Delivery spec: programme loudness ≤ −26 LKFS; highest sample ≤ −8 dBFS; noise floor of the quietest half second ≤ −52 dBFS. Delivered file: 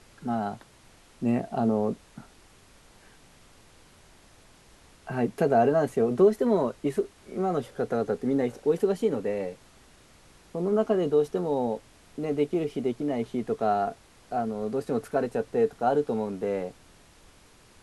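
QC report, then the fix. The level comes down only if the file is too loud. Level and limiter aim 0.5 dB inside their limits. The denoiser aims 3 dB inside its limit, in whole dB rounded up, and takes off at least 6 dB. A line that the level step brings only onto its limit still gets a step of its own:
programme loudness −27.5 LKFS: in spec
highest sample −10.5 dBFS: in spec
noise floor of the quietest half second −56 dBFS: in spec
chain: no processing needed

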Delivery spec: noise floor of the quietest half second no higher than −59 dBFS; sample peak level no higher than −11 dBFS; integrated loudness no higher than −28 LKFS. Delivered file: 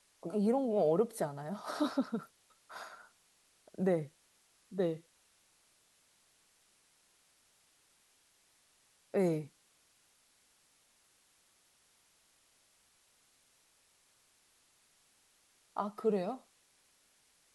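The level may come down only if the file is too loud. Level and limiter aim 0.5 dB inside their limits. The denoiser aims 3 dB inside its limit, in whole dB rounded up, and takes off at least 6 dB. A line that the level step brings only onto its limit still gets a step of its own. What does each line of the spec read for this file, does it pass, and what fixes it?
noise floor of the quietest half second −70 dBFS: in spec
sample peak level −19.0 dBFS: in spec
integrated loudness −35.5 LKFS: in spec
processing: no processing needed

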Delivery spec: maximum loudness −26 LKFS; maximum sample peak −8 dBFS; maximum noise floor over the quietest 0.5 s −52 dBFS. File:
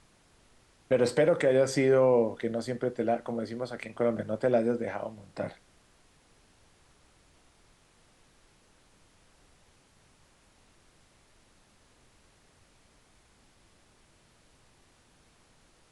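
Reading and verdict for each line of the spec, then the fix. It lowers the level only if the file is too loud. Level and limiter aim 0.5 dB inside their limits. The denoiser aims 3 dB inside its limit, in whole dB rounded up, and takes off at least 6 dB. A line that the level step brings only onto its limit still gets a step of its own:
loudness −28.0 LKFS: in spec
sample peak −13.5 dBFS: in spec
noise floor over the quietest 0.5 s −63 dBFS: in spec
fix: no processing needed

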